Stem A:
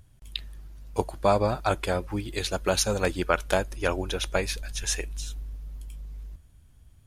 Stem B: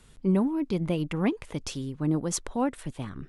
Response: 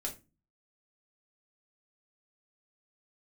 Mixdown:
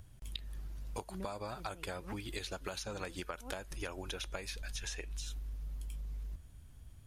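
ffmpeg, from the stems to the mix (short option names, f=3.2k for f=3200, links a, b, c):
-filter_complex "[0:a]acrossover=split=900|5800[a][b][c];[a]acompressor=threshold=-36dB:ratio=4[d];[b]acompressor=threshold=-35dB:ratio=4[e];[c]acompressor=threshold=-46dB:ratio=4[f];[d][e][f]amix=inputs=3:normalize=0,volume=0.5dB,asplit=2[g][h];[1:a]adelay=850,volume=-11.5dB[i];[h]apad=whole_len=182535[j];[i][j]sidechaincompress=threshold=-44dB:ratio=8:attack=16:release=230[k];[g][k]amix=inputs=2:normalize=0,acompressor=threshold=-38dB:ratio=6"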